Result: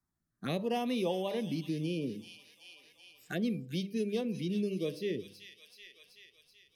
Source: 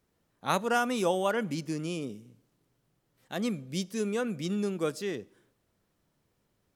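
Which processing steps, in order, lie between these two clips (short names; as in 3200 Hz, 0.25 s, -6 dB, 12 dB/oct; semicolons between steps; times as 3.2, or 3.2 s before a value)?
spectral noise reduction 26 dB; de-hum 99.41 Hz, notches 16; envelope phaser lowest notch 490 Hz, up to 1400 Hz, full sweep at -33.5 dBFS; rotary speaker horn 0.8 Hz, later 5.5 Hz, at 2.96; thin delay 0.38 s, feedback 42%, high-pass 2800 Hz, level -8 dB; on a send at -21 dB: reverb RT60 0.45 s, pre-delay 7 ms; on the sum: three-band squash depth 70%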